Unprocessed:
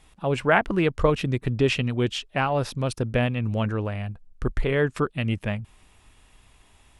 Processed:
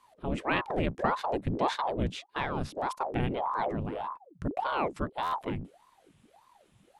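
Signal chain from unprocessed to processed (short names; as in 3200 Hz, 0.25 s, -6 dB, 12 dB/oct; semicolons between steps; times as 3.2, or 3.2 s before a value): octaver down 2 oct, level +4 dB; stuck buffer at 5.22, samples 512, times 8; ring modulator with a swept carrier 580 Hz, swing 80%, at 1.7 Hz; gain -7.5 dB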